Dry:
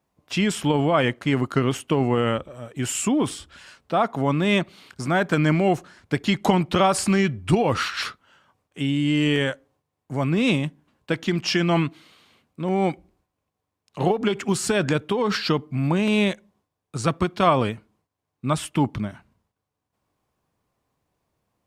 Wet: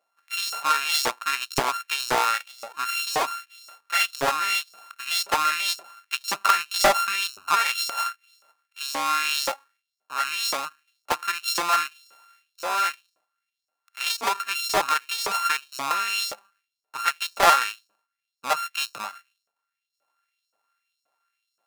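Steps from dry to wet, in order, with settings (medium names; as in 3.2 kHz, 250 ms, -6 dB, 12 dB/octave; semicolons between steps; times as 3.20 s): sorted samples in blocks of 32 samples; LFO high-pass saw up 1.9 Hz 570–5700 Hz; loudspeaker Doppler distortion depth 0.6 ms; trim -1 dB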